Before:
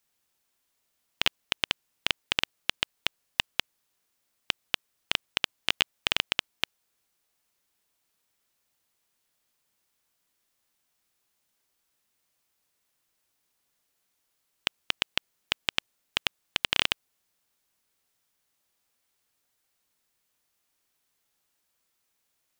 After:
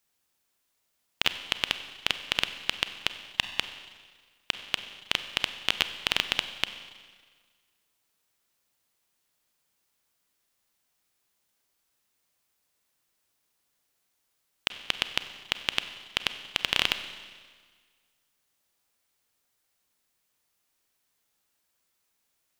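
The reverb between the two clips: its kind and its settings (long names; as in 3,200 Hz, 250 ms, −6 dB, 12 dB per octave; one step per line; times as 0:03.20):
four-comb reverb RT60 1.6 s, combs from 31 ms, DRR 10 dB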